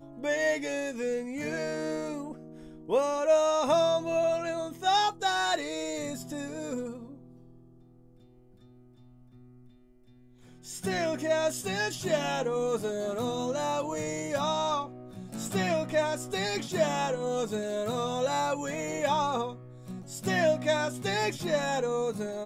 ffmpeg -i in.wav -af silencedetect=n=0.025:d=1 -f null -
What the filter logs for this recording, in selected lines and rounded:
silence_start: 6.91
silence_end: 10.70 | silence_duration: 3.79